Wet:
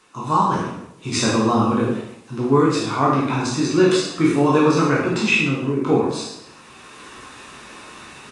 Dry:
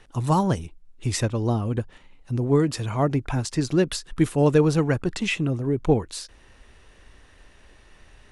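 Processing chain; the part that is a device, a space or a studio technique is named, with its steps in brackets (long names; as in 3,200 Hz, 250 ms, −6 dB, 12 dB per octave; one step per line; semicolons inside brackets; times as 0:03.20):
peak hold with a decay on every bin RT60 0.45 s
comb filter 0.8 ms, depth 38%
echo with shifted repeats 101 ms, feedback 44%, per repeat +110 Hz, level −21 dB
filmed off a television (band-pass filter 220–7,000 Hz; parametric band 1,100 Hz +6.5 dB 0.46 octaves; convolution reverb RT60 0.75 s, pre-delay 12 ms, DRR −2.5 dB; white noise bed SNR 35 dB; automatic gain control gain up to 13.5 dB; level −4 dB; AAC 48 kbit/s 22,050 Hz)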